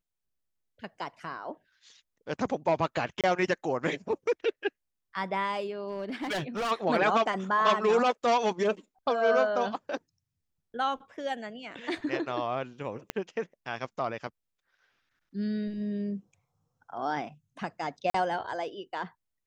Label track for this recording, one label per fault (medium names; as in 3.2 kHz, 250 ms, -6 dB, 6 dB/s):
3.210000	3.240000	dropout 27 ms
5.880000	6.720000	clipped -28.5 dBFS
13.100000	13.100000	pop -15 dBFS
18.100000	18.140000	dropout 44 ms